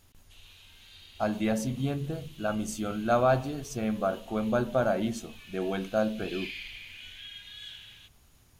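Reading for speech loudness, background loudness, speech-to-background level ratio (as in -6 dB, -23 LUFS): -30.0 LUFS, -46.5 LUFS, 16.5 dB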